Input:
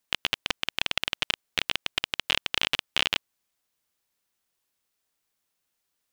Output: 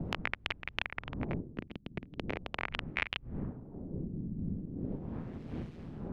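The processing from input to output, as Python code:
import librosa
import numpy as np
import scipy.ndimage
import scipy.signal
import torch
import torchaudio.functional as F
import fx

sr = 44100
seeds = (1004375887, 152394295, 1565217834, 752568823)

y = fx.pitch_trill(x, sr, semitones=-5.0, every_ms=171)
y = fx.dmg_wind(y, sr, seeds[0], corner_hz=150.0, level_db=-39.0)
y = y * np.sin(2.0 * np.pi * 83.0 * np.arange(len(y)) / sr)
y = fx.filter_lfo_lowpass(y, sr, shape='sine', hz=0.4, low_hz=230.0, high_hz=2500.0, q=1.2)
y = fx.band_squash(y, sr, depth_pct=100)
y = F.gain(torch.from_numpy(y), -3.0).numpy()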